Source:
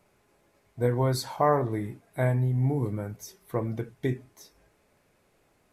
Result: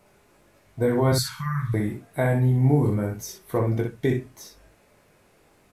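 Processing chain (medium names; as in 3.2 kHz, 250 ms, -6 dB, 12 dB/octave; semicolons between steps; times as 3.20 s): peak limiter -17 dBFS, peak gain reduction 6 dB; 1.12–1.74 s: elliptic band-stop 170–1300 Hz, stop band 40 dB; early reflections 20 ms -5 dB, 62 ms -5 dB; trim +5.5 dB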